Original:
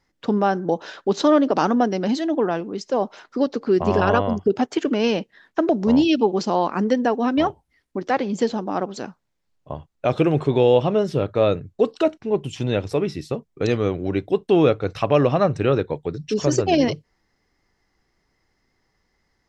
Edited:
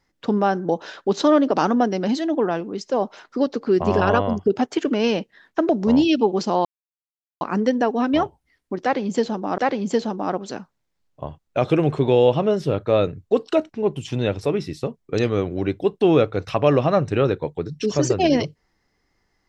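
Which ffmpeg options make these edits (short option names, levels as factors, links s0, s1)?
-filter_complex "[0:a]asplit=3[s0][s1][s2];[s0]atrim=end=6.65,asetpts=PTS-STARTPTS,afade=t=out:st=6.646:d=0.004:c=hsin,apad=pad_dur=0.76[s3];[s1]atrim=start=6.65:end=8.822,asetpts=PTS-STARTPTS,afade=t=in:d=0.004:c=hsin[s4];[s2]atrim=start=8.058[s5];[s3][s4]concat=n=2:v=0:a=1[s6];[s6][s5]acrossfade=d=0.004:c1=hsin:c2=hsin"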